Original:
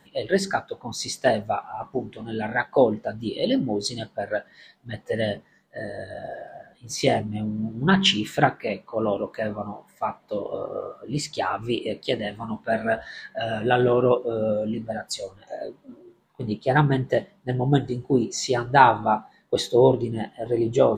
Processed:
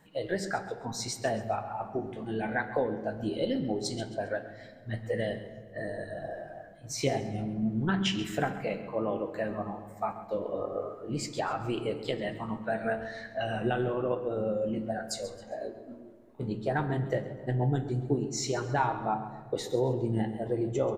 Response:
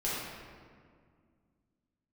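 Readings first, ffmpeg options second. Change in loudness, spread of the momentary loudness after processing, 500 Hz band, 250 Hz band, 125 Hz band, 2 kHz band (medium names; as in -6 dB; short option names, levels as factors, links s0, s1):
-8.0 dB, 10 LU, -8.0 dB, -6.5 dB, -5.5 dB, -9.0 dB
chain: -filter_complex "[0:a]equalizer=f=3600:w=1.9:g=-6.5,acompressor=threshold=0.0631:ratio=3,flanger=delay=6.3:depth=6.3:regen=68:speed=0.16:shape=sinusoidal,aecho=1:1:134|268|402:0.188|0.0678|0.0244,asplit=2[s0][s1];[1:a]atrim=start_sample=2205,lowshelf=f=110:g=12[s2];[s1][s2]afir=irnorm=-1:irlink=0,volume=0.133[s3];[s0][s3]amix=inputs=2:normalize=0"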